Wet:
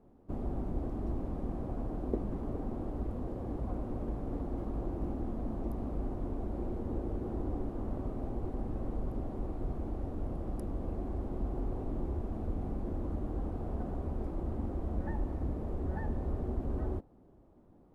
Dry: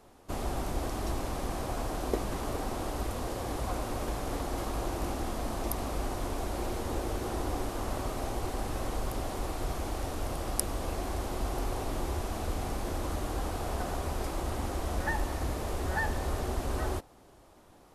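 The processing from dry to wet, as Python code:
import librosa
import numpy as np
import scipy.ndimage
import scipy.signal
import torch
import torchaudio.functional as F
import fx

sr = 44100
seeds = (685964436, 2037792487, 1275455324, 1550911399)

y = fx.curve_eq(x, sr, hz=(110.0, 220.0, 5800.0), db=(0, 4, -29))
y = F.gain(torch.from_numpy(y), -1.5).numpy()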